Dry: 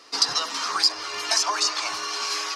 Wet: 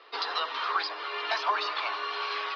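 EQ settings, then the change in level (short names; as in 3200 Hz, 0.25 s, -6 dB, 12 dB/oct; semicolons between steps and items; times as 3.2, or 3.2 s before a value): elliptic band-pass 390–3700 Hz, stop band 40 dB; air absorption 100 m; 0.0 dB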